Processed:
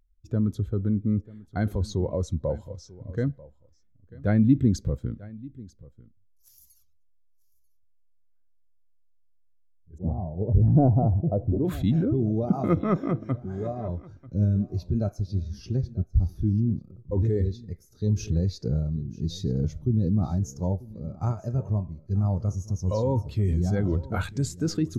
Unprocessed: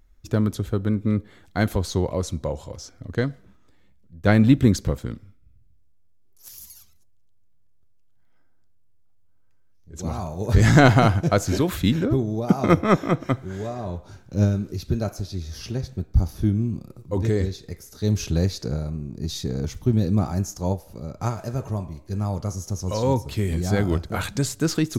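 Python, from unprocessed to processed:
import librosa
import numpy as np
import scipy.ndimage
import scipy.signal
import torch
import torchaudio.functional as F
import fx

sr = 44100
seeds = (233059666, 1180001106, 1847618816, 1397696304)

p1 = fx.cheby2_lowpass(x, sr, hz=4800.0, order=4, stop_db=80, at=(9.98, 11.65))
p2 = fx.over_compress(p1, sr, threshold_db=-25.0, ratio=-1.0)
p3 = p1 + F.gain(torch.from_numpy(p2), 1.5).numpy()
p4 = p3 + 10.0 ** (-14.0 / 20.0) * np.pad(p3, (int(941 * sr / 1000.0), 0))[:len(p3)]
p5 = fx.spectral_expand(p4, sr, expansion=1.5)
y = F.gain(torch.from_numpy(p5), -7.0).numpy()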